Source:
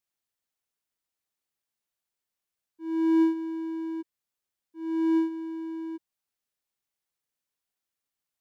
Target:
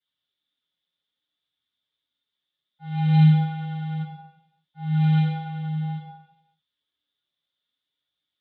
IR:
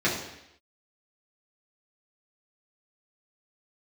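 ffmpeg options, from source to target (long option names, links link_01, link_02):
-filter_complex "[0:a]aeval=exprs='val(0)*sin(2*PI*480*n/s)':channel_layout=same,flanger=delay=0.4:depth=5.7:regen=45:speed=0.61:shape=triangular,acrossover=split=380|610|1300[link_01][link_02][link_03][link_04];[link_03]asoftclip=type=tanh:threshold=-38.5dB[link_05];[link_01][link_02][link_05][link_04]amix=inputs=4:normalize=0,lowpass=frequency=3500:width_type=q:width=13[link_06];[1:a]atrim=start_sample=2205,asetrate=36603,aresample=44100[link_07];[link_06][link_07]afir=irnorm=-1:irlink=0,volume=-8dB"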